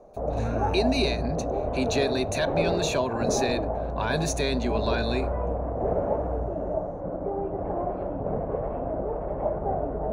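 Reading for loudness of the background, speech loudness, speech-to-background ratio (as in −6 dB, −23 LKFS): −29.5 LKFS, −29.0 LKFS, 0.5 dB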